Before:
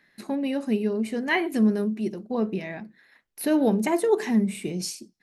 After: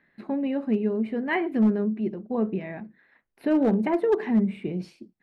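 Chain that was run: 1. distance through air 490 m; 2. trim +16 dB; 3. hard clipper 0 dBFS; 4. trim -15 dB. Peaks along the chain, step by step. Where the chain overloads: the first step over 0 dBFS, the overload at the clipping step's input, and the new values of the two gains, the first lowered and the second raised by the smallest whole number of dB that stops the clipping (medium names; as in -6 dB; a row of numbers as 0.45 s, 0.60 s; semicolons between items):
-12.0 dBFS, +4.0 dBFS, 0.0 dBFS, -15.0 dBFS; step 2, 4.0 dB; step 2 +12 dB, step 4 -11 dB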